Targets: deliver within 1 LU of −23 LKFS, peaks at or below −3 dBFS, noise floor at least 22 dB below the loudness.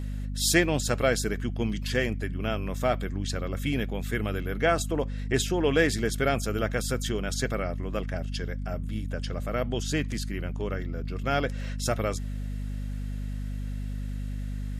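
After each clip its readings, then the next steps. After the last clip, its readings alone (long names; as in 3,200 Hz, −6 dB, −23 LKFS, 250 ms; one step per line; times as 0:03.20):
mains hum 50 Hz; hum harmonics up to 250 Hz; level of the hum −30 dBFS; integrated loudness −29.0 LKFS; sample peak −9.0 dBFS; target loudness −23.0 LKFS
→ mains-hum notches 50/100/150/200/250 Hz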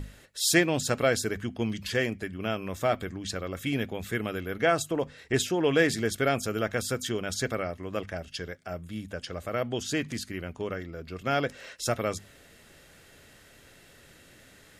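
mains hum none found; integrated loudness −29.5 LKFS; sample peak −8.5 dBFS; target loudness −23.0 LKFS
→ level +6.5 dB
brickwall limiter −3 dBFS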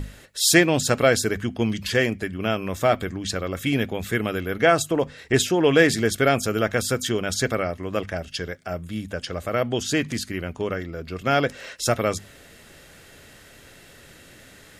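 integrated loudness −23.0 LKFS; sample peak −3.0 dBFS; background noise floor −49 dBFS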